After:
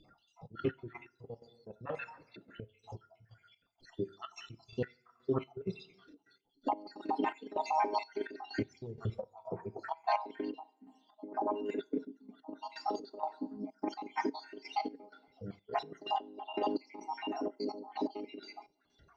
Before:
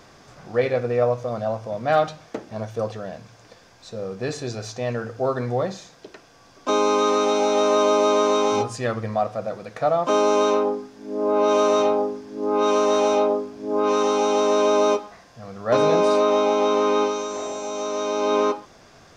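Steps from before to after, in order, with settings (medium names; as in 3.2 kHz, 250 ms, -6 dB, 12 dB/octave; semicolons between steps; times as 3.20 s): random holes in the spectrogram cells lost 69%; spectral noise reduction 13 dB; compressor with a negative ratio -24 dBFS, ratio -0.5; formant shift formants -5 st; distance through air 80 m; two-slope reverb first 0.37 s, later 1.6 s, from -18 dB, DRR 11.5 dB; trance gate "xxxx.x..x...xx.." 127 bpm -12 dB; trim -6 dB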